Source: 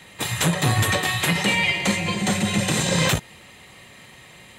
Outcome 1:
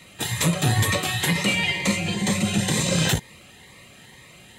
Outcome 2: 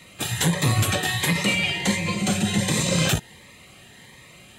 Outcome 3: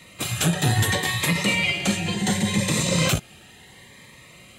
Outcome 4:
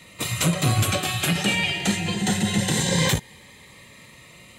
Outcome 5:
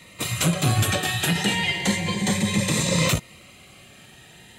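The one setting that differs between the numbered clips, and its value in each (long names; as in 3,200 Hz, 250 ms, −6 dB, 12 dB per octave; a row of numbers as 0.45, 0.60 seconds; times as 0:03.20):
phaser whose notches keep moving one way, speed: 2.1, 1.4, 0.7, 0.23, 0.33 Hertz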